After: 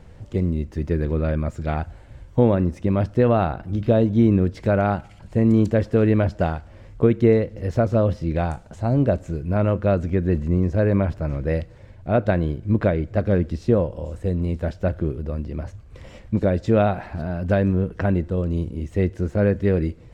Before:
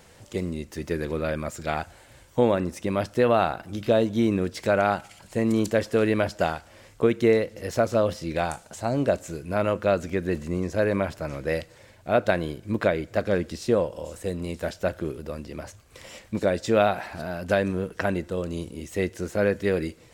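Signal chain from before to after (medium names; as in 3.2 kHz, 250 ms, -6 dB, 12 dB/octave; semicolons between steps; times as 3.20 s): RIAA curve playback; trim -1 dB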